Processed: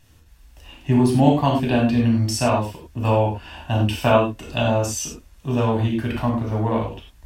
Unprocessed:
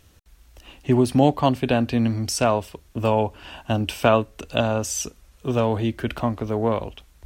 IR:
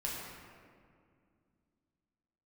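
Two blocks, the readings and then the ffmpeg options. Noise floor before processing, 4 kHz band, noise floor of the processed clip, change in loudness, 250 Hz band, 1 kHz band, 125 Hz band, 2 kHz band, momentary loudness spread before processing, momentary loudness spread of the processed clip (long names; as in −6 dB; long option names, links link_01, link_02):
−55 dBFS, +1.0 dB, −52 dBFS, +2.0 dB, +3.0 dB, +1.5 dB, +4.5 dB, +1.5 dB, 10 LU, 11 LU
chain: -filter_complex "[1:a]atrim=start_sample=2205,afade=type=out:start_time=0.16:duration=0.01,atrim=end_sample=7497[link_01];[0:a][link_01]afir=irnorm=-1:irlink=0"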